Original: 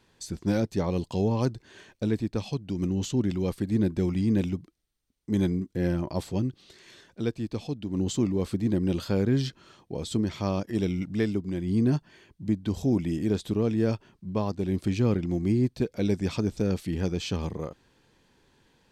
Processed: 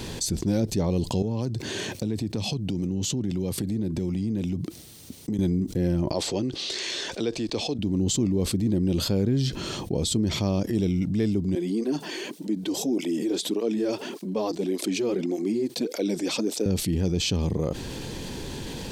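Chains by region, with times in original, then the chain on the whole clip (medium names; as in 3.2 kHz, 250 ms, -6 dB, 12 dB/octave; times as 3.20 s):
1.22–5.39 s: high-pass 86 Hz 24 dB/octave + compression 4:1, threshold -38 dBFS
6.12–7.79 s: three-band isolator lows -17 dB, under 330 Hz, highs -20 dB, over 7.9 kHz + tape noise reduction on one side only encoder only
11.55–16.66 s: high-pass 270 Hz 24 dB/octave + cancelling through-zero flanger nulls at 1.7 Hz, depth 5.1 ms
whole clip: peaking EQ 1.4 kHz -10 dB 1.8 oct; level flattener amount 70%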